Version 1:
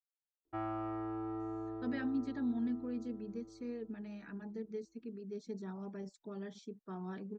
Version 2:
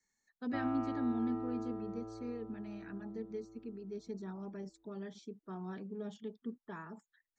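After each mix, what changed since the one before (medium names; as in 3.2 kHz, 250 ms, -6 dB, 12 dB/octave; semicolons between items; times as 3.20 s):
speech: entry -1.40 s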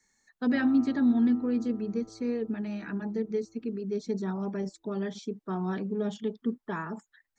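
speech +12.0 dB; background -5.5 dB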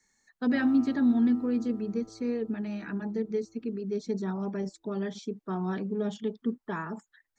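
background: remove low-pass 2.3 kHz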